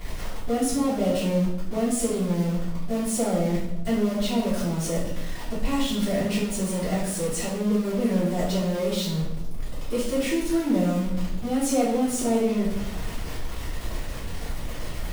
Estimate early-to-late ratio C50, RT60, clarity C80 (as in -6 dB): 3.0 dB, 0.85 s, 6.5 dB